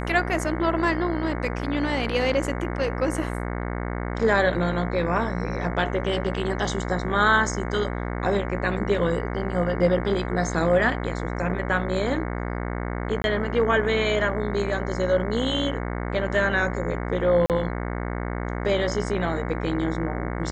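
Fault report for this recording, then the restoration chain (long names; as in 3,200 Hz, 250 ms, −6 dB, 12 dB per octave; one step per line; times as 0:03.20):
mains buzz 60 Hz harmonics 37 −29 dBFS
0:13.22–0:13.24: drop-out 21 ms
0:17.46–0:17.50: drop-out 38 ms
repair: hum removal 60 Hz, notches 37
repair the gap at 0:13.22, 21 ms
repair the gap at 0:17.46, 38 ms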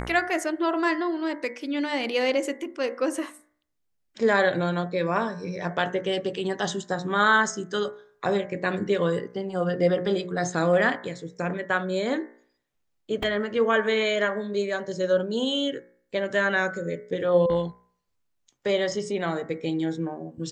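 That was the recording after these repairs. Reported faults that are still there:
none of them is left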